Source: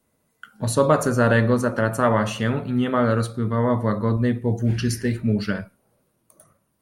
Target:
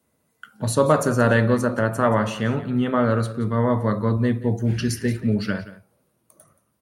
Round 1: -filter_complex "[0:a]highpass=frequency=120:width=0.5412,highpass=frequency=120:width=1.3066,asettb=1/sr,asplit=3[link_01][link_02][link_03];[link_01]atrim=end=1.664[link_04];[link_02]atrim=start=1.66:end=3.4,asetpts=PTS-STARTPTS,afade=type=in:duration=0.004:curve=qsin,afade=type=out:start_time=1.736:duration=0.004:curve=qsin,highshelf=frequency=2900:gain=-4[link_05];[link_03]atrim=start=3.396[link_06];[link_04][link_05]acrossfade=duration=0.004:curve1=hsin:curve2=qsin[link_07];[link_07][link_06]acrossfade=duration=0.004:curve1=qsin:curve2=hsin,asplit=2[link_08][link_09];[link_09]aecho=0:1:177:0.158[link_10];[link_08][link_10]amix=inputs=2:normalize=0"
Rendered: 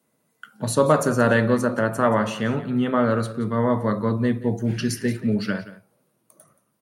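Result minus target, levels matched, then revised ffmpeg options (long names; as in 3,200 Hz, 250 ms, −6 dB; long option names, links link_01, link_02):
125 Hz band −3.0 dB
-filter_complex "[0:a]highpass=frequency=57:width=0.5412,highpass=frequency=57:width=1.3066,asettb=1/sr,asplit=3[link_01][link_02][link_03];[link_01]atrim=end=1.664[link_04];[link_02]atrim=start=1.66:end=3.4,asetpts=PTS-STARTPTS,afade=type=in:duration=0.004:curve=qsin,afade=type=out:start_time=1.736:duration=0.004:curve=qsin,highshelf=frequency=2900:gain=-4[link_05];[link_03]atrim=start=3.396[link_06];[link_04][link_05]acrossfade=duration=0.004:curve1=hsin:curve2=qsin[link_07];[link_07][link_06]acrossfade=duration=0.004:curve1=qsin:curve2=hsin,asplit=2[link_08][link_09];[link_09]aecho=0:1:177:0.158[link_10];[link_08][link_10]amix=inputs=2:normalize=0"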